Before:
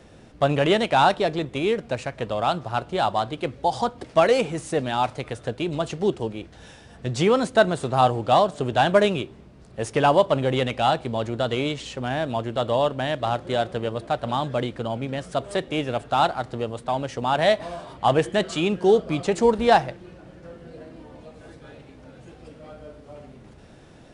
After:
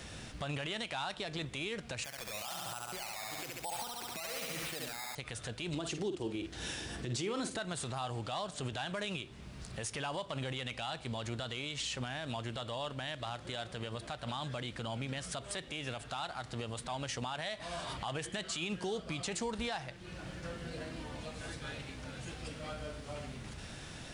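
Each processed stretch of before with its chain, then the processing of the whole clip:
2.04–5.15 s: bass shelf 190 Hz -11 dB + decimation with a swept rate 10× 1.1 Hz + flutter echo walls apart 11.6 m, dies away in 0.82 s
5.74–7.59 s: high-pass 41 Hz + peaking EQ 340 Hz +14 dB 0.61 oct + doubling 49 ms -11.5 dB
whole clip: amplifier tone stack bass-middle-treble 5-5-5; compression 2.5:1, threshold -53 dBFS; peak limiter -45 dBFS; trim +17 dB

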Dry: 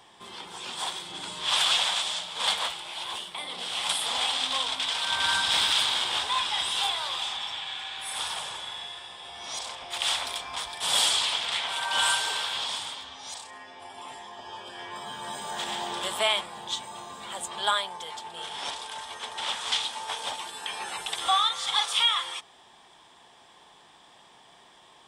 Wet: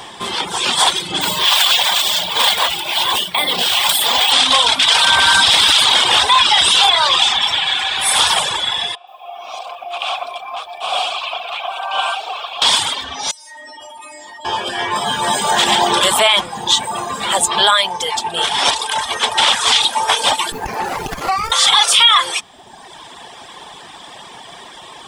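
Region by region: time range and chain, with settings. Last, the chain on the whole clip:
1.21–4.32 s: band-stop 1.3 kHz, Q 13 + compression 3:1, threshold -31 dBFS + careless resampling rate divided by 2×, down filtered, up hold
6.32–7.42 s: low-pass 9.5 kHz + short-mantissa float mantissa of 6-bit
8.95–12.62 s: vowel filter a + bit-crushed delay 122 ms, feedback 35%, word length 11-bit, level -11.5 dB
13.31–14.45 s: inharmonic resonator 300 Hz, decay 0.68 s, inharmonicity 0.002 + level flattener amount 100%
20.52–21.52 s: compression 5:1, threshold -34 dBFS + tilt shelf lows +6 dB, about 900 Hz + sliding maximum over 9 samples
whole clip: reverb removal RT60 1.1 s; loudness maximiser +22.5 dB; trim -1 dB

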